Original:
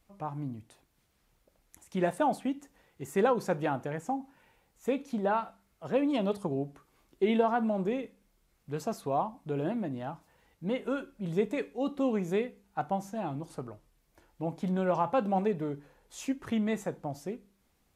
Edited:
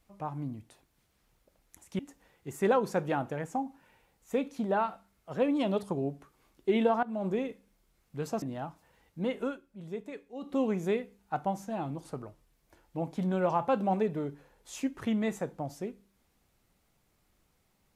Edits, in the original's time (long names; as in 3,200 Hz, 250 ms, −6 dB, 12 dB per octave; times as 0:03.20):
0:01.99–0:02.53: remove
0:07.57–0:07.82: fade in, from −19 dB
0:08.96–0:09.87: remove
0:10.89–0:12.00: duck −10 dB, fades 0.14 s